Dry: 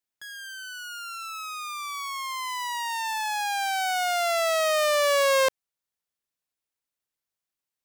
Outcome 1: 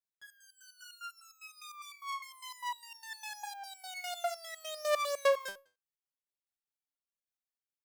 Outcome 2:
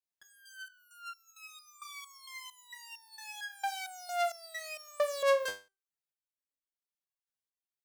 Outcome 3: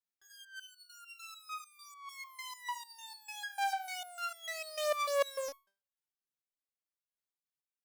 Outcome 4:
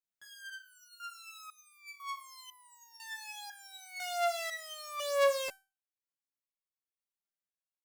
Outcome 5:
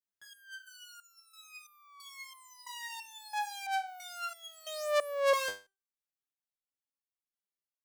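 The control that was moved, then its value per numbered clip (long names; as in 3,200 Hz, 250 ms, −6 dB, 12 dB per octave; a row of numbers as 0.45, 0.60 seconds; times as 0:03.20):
step-sequenced resonator, speed: 9.9, 4.4, 6.7, 2, 3 Hertz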